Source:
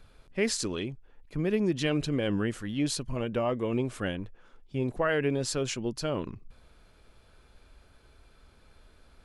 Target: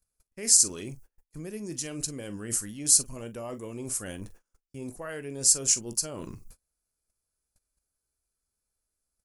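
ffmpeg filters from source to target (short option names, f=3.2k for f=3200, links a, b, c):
-af "aecho=1:1:19|43:0.141|0.211,agate=range=-32dB:threshold=-47dB:ratio=16:detection=peak,areverse,acompressor=threshold=-35dB:ratio=6,areverse,aexciter=amount=14:drive=5.1:freq=5.3k"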